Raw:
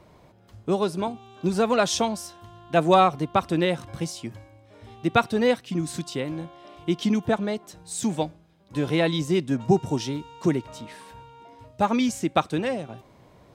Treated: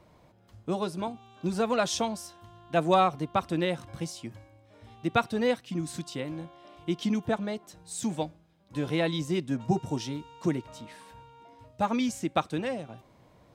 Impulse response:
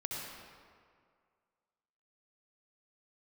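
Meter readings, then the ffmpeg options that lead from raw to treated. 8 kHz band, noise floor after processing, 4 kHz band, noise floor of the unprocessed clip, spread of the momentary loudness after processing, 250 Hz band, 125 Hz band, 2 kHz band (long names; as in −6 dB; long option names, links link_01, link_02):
−5.0 dB, −60 dBFS, −5.0 dB, −55 dBFS, 13 LU, −5.0 dB, −5.0 dB, −5.0 dB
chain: -af "bandreject=frequency=400:width=12,volume=-5dB"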